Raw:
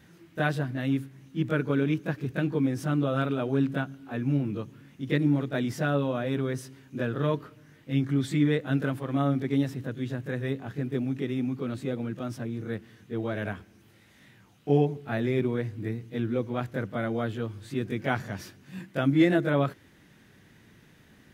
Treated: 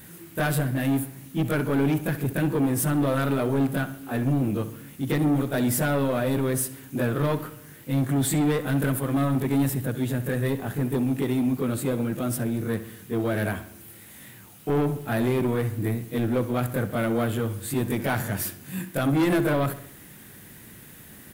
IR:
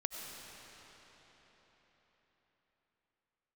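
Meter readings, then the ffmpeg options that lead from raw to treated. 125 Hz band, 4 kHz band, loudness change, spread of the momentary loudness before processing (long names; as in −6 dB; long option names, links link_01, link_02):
+3.5 dB, +3.5 dB, +3.0 dB, 10 LU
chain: -filter_complex "[0:a]asplit=2[link_01][link_02];[link_02]alimiter=limit=-18dB:level=0:latency=1,volume=3dB[link_03];[link_01][link_03]amix=inputs=2:normalize=0,aexciter=amount=8.4:drive=3.1:freq=7900,asoftclip=type=tanh:threshold=-18.5dB,acrusher=bits=8:mix=0:aa=0.000001,asplit=2[link_04][link_05];[link_05]adelay=65,lowpass=frequency=4600:poles=1,volume=-13dB,asplit=2[link_06][link_07];[link_07]adelay=65,lowpass=frequency=4600:poles=1,volume=0.5,asplit=2[link_08][link_09];[link_09]adelay=65,lowpass=frequency=4600:poles=1,volume=0.5,asplit=2[link_10][link_11];[link_11]adelay=65,lowpass=frequency=4600:poles=1,volume=0.5,asplit=2[link_12][link_13];[link_13]adelay=65,lowpass=frequency=4600:poles=1,volume=0.5[link_14];[link_04][link_06][link_08][link_10][link_12][link_14]amix=inputs=6:normalize=0"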